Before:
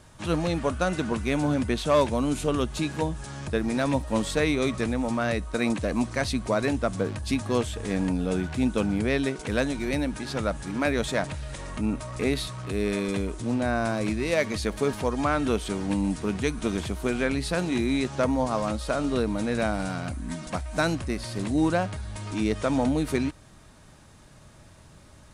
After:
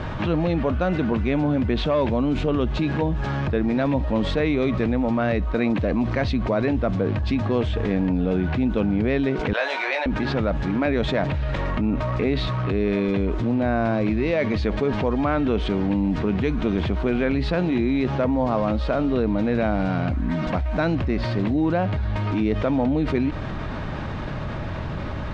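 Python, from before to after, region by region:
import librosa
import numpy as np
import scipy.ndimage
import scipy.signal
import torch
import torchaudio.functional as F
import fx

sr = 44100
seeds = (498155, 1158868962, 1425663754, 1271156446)

y = fx.chain(x, sr, fx.highpass(hz=670.0, slope=24),
    fx.doubler(ms=19.0, db=-4.0), at=(9.53, 10.06))
y = scipy.signal.sosfilt(scipy.signal.bessel(4, 2400.0, 'lowpass', norm='mag', fs=sr, output='sos'), y)
y = fx.dynamic_eq(y, sr, hz=1300.0, q=1.1, threshold_db=-41.0, ratio=4.0, max_db=-4)
y = fx.env_flatten(y, sr, amount_pct=70)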